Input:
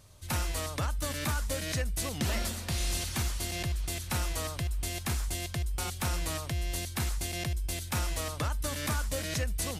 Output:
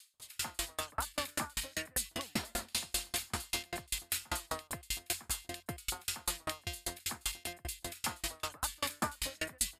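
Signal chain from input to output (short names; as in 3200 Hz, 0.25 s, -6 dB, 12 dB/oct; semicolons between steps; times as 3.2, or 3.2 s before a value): low shelf 470 Hz -7 dB; notch 5900 Hz, Q 6.7; bands offset in time highs, lows 0.14 s, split 1900 Hz; limiter -27 dBFS, peak gain reduction 4.5 dB; EQ curve 140 Hz 0 dB, 230 Hz +8 dB, 570 Hz +6 dB, 820 Hz +10 dB; dB-ramp tremolo decaying 5.1 Hz, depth 38 dB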